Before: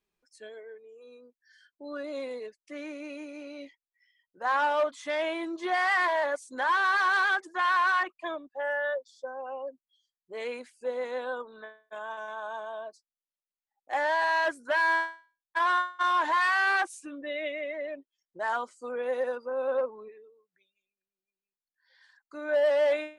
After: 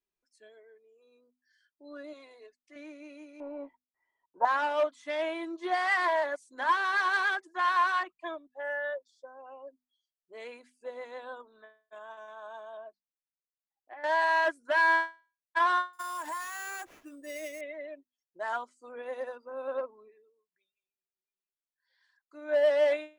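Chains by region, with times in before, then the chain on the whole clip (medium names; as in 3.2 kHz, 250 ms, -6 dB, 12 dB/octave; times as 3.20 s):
2.13–2.76 s: low-pass 8.9 kHz + peaking EQ 170 Hz -12.5 dB 1.7 oct + comb 2.8 ms, depth 45%
3.40–4.45 s: companding laws mixed up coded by mu + resonant low-pass 930 Hz, resonance Q 7.3 + peaking EQ 480 Hz +4 dB 0.91 oct
12.77–14.04 s: low-pass 2.7 kHz 24 dB/octave + compression 12:1, threshold -33 dBFS
15.93–17.61 s: compression 16:1, threshold -29 dBFS + sample-rate reducer 8.6 kHz
whole clip: hum notches 50/100/150/200/250 Hz; comb 3 ms, depth 30%; upward expansion 1.5:1, over -42 dBFS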